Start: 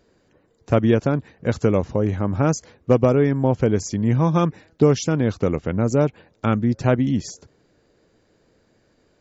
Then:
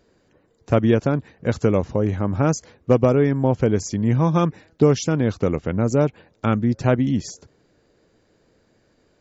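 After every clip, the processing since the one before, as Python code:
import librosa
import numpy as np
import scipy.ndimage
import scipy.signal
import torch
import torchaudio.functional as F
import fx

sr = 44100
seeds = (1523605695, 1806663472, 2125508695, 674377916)

y = x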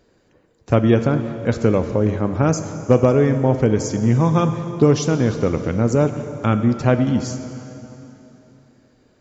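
y = fx.rev_plate(x, sr, seeds[0], rt60_s=3.2, hf_ratio=0.85, predelay_ms=0, drr_db=8.0)
y = F.gain(torch.from_numpy(y), 1.5).numpy()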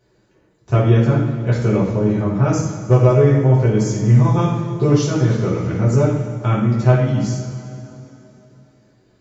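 y = fx.rev_fdn(x, sr, rt60_s=0.72, lf_ratio=1.25, hf_ratio=1.0, size_ms=47.0, drr_db=-7.0)
y = F.gain(torch.from_numpy(y), -8.0).numpy()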